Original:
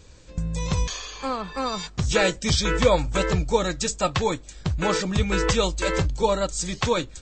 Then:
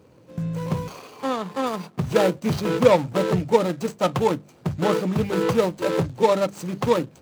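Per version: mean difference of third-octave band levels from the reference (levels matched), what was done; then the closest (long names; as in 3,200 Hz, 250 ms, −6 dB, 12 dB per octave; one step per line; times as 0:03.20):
6.5 dB: running median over 25 samples
high-pass filter 120 Hz 24 dB per octave
mains-hum notches 50/100/150/200 Hz
level +4.5 dB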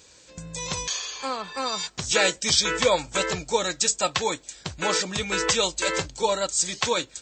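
4.0 dB: high-pass filter 470 Hz 6 dB per octave
high-shelf EQ 3,900 Hz +7.5 dB
notch filter 1,200 Hz, Q 16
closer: second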